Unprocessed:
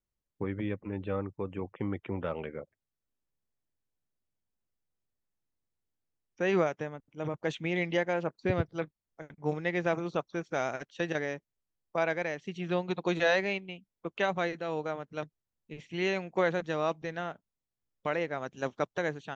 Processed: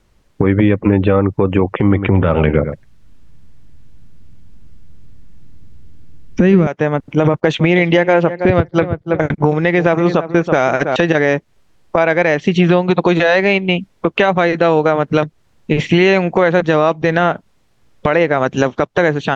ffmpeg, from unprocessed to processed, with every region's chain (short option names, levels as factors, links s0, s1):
-filter_complex "[0:a]asettb=1/sr,asplit=3[s0][s1][s2];[s0]atrim=end=1.804[s3];[s1]atrim=start=1.8:end=6.67,asetpts=PTS-STARTPTS,afade=t=in:d=0.004:c=qsin,afade=t=out:st=4.866:d=0.004:c=qsin,asubboost=boost=10:cutoff=220,aecho=1:1:103:0.2,atrim=end_sample=214767[s4];[s2]atrim=start=6.666[s5];[s3][s4]acrossfade=d=0.004:c1=hsin:c2=qsin[s6];[s6][s5]acrossfade=d=0.004:c1=qsin:c2=hsin,asettb=1/sr,asplit=3[s7][s8][s9];[s7]atrim=end=7.274[s10];[s8]atrim=start=7.27:end=10.96,asetpts=PTS-STARTPTS,afade=t=in:d=0.004:c=qsin,afade=t=out:st=3.686:d=0.004:c=qsin,agate=range=0.178:threshold=0.00224:ratio=16:release=100:detection=peak,asplit=2[s11][s12];[s12]adelay=324,lowpass=f=1700:p=1,volume=0.158,asplit=2[s13][s14];[s14]adelay=324,lowpass=f=1700:p=1,volume=0.16[s15];[s11][s13][s15]amix=inputs=3:normalize=0,atrim=end_sample=162729[s16];[s9]atrim=start=10.956[s17];[s10][s16]acrossfade=d=0.004:c1=hsin:c2=qsin[s18];[s18][s17]acrossfade=d=0.004:c1=qsin:c2=hsin,aemphasis=mode=reproduction:type=50fm,acompressor=threshold=0.00891:ratio=12,alimiter=level_in=56.2:limit=0.891:release=50:level=0:latency=1,volume=0.891"